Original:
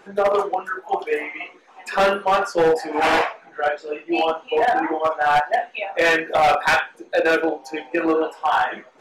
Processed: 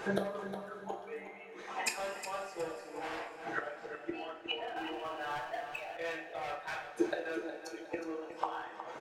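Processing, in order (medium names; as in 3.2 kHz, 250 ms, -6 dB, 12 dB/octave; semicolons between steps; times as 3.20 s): inverted gate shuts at -25 dBFS, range -30 dB; two-slope reverb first 0.32 s, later 4.7 s, from -18 dB, DRR 2 dB; 4.76–5.97 s: power-law waveshaper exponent 0.7; on a send: feedback delay 364 ms, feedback 35%, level -11 dB; on the sum: trim +5.5 dB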